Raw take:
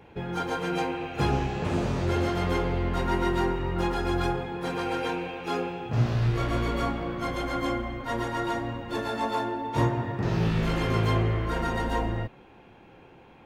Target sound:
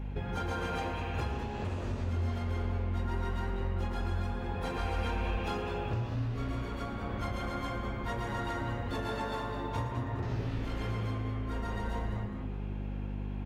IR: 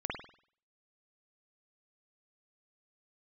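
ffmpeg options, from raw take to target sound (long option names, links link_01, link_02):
-filter_complex "[0:a]lowshelf=frequency=120:width_type=q:width=3:gain=6.5,bandreject=frequency=50:width_type=h:width=6,bandreject=frequency=100:width_type=h:width=6,bandreject=frequency=150:width_type=h:width=6,bandreject=frequency=200:width_type=h:width=6,bandreject=frequency=250:width_type=h:width=6,bandreject=frequency=300:width_type=h:width=6,bandreject=frequency=350:width_type=h:width=6,aeval=exprs='val(0)+0.0158*(sin(2*PI*50*n/s)+sin(2*PI*2*50*n/s)/2+sin(2*PI*3*50*n/s)/3+sin(2*PI*4*50*n/s)/4+sin(2*PI*5*50*n/s)/5)':channel_layout=same,acompressor=threshold=-32dB:ratio=10,asplit=3[link_01][link_02][link_03];[link_01]afade=type=out:start_time=4.78:duration=0.02[link_04];[link_02]asubboost=boost=6:cutoff=55,afade=type=in:start_time=4.78:duration=0.02,afade=type=out:start_time=5.37:duration=0.02[link_05];[link_03]afade=type=in:start_time=5.37:duration=0.02[link_06];[link_04][link_05][link_06]amix=inputs=3:normalize=0,asplit=5[link_07][link_08][link_09][link_10][link_11];[link_08]adelay=205,afreqshift=150,volume=-10dB[link_12];[link_09]adelay=410,afreqshift=300,volume=-19.4dB[link_13];[link_10]adelay=615,afreqshift=450,volume=-28.7dB[link_14];[link_11]adelay=820,afreqshift=600,volume=-38.1dB[link_15];[link_07][link_12][link_13][link_14][link_15]amix=inputs=5:normalize=0,asplit=2[link_16][link_17];[1:a]atrim=start_sample=2205,adelay=113[link_18];[link_17][link_18]afir=irnorm=-1:irlink=0,volume=-10.5dB[link_19];[link_16][link_19]amix=inputs=2:normalize=0"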